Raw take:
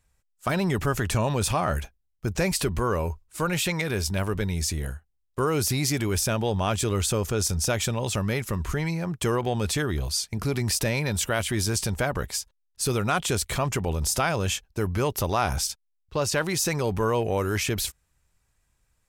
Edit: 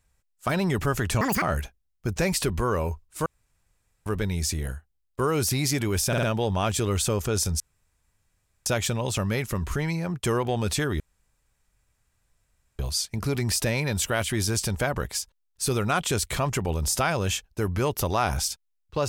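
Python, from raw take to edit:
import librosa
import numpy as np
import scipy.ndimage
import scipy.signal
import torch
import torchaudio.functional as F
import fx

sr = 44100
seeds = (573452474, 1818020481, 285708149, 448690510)

y = fx.edit(x, sr, fx.speed_span(start_s=1.21, length_s=0.4, speed=1.91),
    fx.room_tone_fill(start_s=3.45, length_s=0.8),
    fx.stutter(start_s=6.27, slice_s=0.05, count=4),
    fx.insert_room_tone(at_s=7.64, length_s=1.06),
    fx.insert_room_tone(at_s=9.98, length_s=1.79), tone=tone)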